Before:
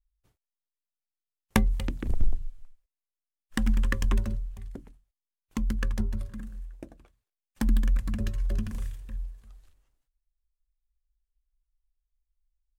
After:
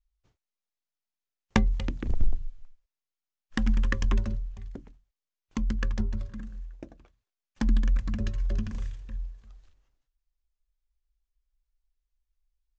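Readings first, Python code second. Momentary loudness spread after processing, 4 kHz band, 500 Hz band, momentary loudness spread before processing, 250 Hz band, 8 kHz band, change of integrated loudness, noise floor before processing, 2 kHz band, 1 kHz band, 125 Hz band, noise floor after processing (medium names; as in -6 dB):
17 LU, 0.0 dB, 0.0 dB, 17 LU, 0.0 dB, -4.5 dB, 0.0 dB, under -85 dBFS, 0.0 dB, 0.0 dB, 0.0 dB, under -85 dBFS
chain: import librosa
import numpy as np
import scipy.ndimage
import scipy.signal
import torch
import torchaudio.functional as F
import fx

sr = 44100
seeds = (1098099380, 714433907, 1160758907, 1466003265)

y = scipy.signal.sosfilt(scipy.signal.butter(8, 7000.0, 'lowpass', fs=sr, output='sos'), x)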